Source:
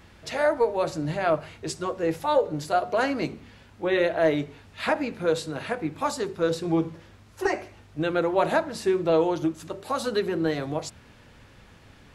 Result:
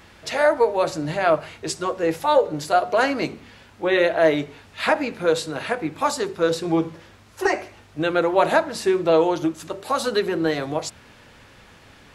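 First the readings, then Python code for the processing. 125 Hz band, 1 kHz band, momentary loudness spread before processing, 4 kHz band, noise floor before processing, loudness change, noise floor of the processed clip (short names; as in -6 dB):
+0.5 dB, +5.5 dB, 10 LU, +6.0 dB, -53 dBFS, +4.5 dB, -50 dBFS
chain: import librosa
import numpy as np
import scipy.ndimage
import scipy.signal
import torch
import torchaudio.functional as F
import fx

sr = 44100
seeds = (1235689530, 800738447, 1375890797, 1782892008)

y = fx.low_shelf(x, sr, hz=270.0, db=-7.5)
y = y * 10.0 ** (6.0 / 20.0)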